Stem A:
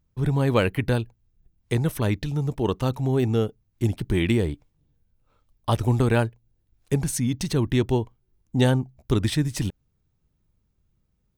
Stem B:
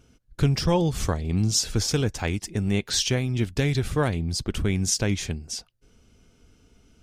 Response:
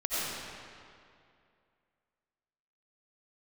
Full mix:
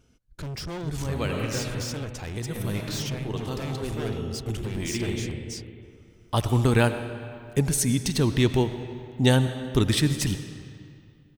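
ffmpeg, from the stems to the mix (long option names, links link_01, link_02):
-filter_complex "[0:a]adynamicequalizer=threshold=0.0126:dfrequency=1800:dqfactor=0.7:tfrequency=1800:tqfactor=0.7:attack=5:release=100:ratio=0.375:range=2.5:mode=boostabove:tftype=highshelf,adelay=650,volume=-1dB,asplit=2[link_01][link_02];[link_02]volume=-17.5dB[link_03];[1:a]volume=27.5dB,asoftclip=hard,volume=-27.5dB,volume=-4.5dB,asplit=2[link_04][link_05];[link_05]apad=whole_len=530225[link_06];[link_01][link_06]sidechaincompress=threshold=-48dB:ratio=8:attack=16:release=1040[link_07];[2:a]atrim=start_sample=2205[link_08];[link_03][link_08]afir=irnorm=-1:irlink=0[link_09];[link_07][link_04][link_09]amix=inputs=3:normalize=0"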